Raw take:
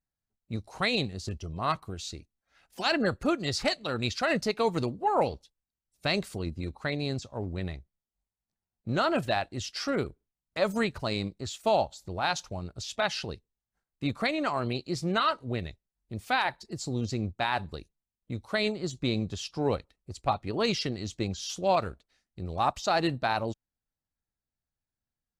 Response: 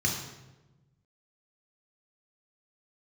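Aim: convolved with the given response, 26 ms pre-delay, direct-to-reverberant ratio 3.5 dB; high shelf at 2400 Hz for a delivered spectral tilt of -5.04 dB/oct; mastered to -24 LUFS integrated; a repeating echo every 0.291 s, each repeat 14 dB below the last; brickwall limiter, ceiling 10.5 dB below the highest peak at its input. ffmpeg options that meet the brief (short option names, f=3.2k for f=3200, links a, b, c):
-filter_complex "[0:a]highshelf=f=2.4k:g=4,alimiter=limit=-22.5dB:level=0:latency=1,aecho=1:1:291|582:0.2|0.0399,asplit=2[a][b];[1:a]atrim=start_sample=2205,adelay=26[c];[b][c]afir=irnorm=-1:irlink=0,volume=-12dB[d];[a][d]amix=inputs=2:normalize=0,volume=6.5dB"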